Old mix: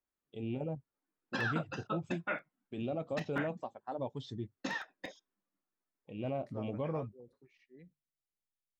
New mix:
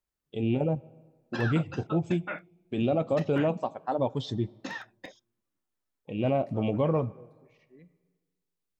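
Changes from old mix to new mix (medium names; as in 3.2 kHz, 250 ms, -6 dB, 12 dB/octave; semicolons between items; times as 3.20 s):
first voice +10.0 dB; reverb: on, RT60 1.5 s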